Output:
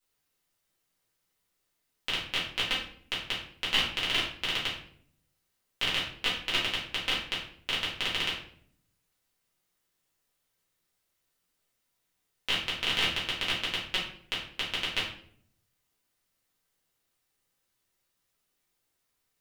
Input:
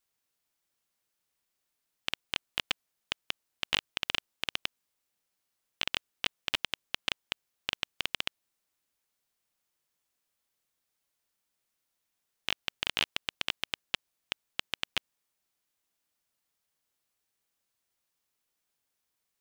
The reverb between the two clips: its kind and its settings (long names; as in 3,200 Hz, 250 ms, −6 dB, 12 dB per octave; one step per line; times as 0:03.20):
rectangular room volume 85 cubic metres, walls mixed, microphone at 2 metres
level −4 dB